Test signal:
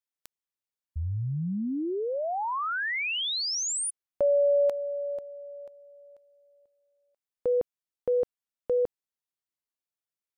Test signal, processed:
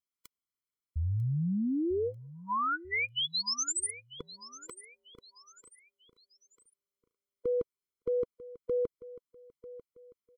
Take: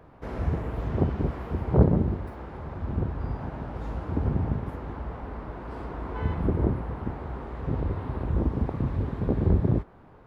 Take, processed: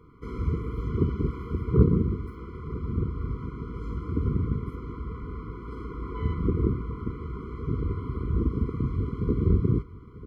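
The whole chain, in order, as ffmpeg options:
ffmpeg -i in.wav -af "aecho=1:1:944|1888|2832:0.141|0.0523|0.0193,afftfilt=real='re*eq(mod(floor(b*sr/1024/490),2),0)':imag='im*eq(mod(floor(b*sr/1024/490),2),0)':win_size=1024:overlap=0.75" out.wav

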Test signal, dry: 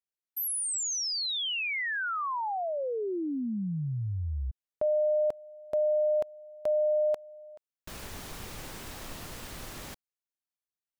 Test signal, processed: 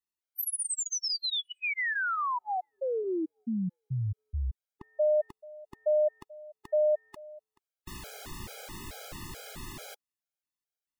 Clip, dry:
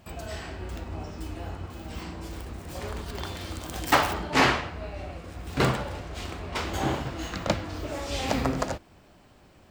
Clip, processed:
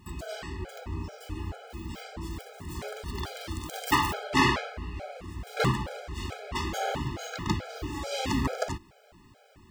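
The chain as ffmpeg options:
ffmpeg -i in.wav -af "asoftclip=type=tanh:threshold=-12.5dB,afftfilt=real='re*gt(sin(2*PI*2.3*pts/sr)*(1-2*mod(floor(b*sr/1024/420),2)),0)':imag='im*gt(sin(2*PI*2.3*pts/sr)*(1-2*mod(floor(b*sr/1024/420),2)),0)':win_size=1024:overlap=0.75,volume=2dB" out.wav

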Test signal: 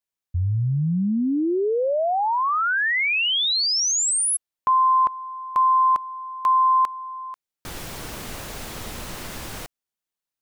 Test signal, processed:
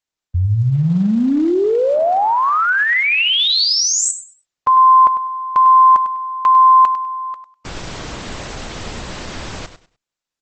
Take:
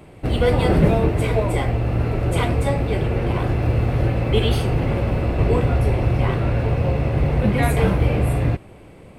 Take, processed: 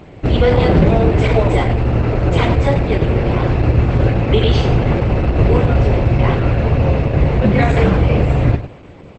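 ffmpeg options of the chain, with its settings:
ffmpeg -i in.wav -af "lowpass=6700,aecho=1:1:100|200|300:0.282|0.0648|0.0149,alimiter=level_in=8dB:limit=-1dB:release=50:level=0:latency=1,volume=-1.5dB" -ar 48000 -c:a libopus -b:a 12k out.opus

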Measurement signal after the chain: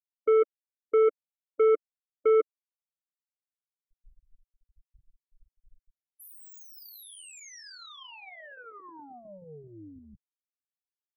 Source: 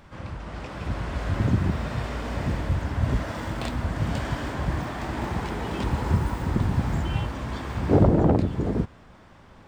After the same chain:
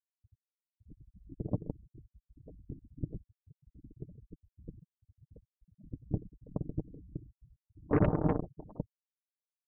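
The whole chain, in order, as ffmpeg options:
ffmpeg -i in.wav -af "afftfilt=real='re*gte(hypot(re,im),0.316)':imag='im*gte(hypot(re,im),0.316)':win_size=1024:overlap=0.75,aeval=exprs='0.447*(cos(1*acos(clip(val(0)/0.447,-1,1)))-cos(1*PI/2))+0.0282*(cos(3*acos(clip(val(0)/0.447,-1,1)))-cos(3*PI/2))+0.0708*(cos(7*acos(clip(val(0)/0.447,-1,1)))-cos(7*PI/2))':channel_layout=same,aecho=1:1:6.6:0.37,volume=-8dB" out.wav

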